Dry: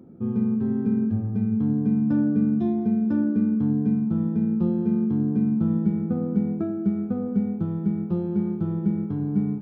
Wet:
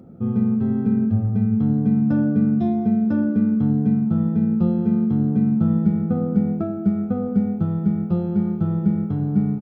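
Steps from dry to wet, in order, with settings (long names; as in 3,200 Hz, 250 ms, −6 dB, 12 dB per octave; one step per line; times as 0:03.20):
comb filter 1.5 ms, depth 44%
level +4.5 dB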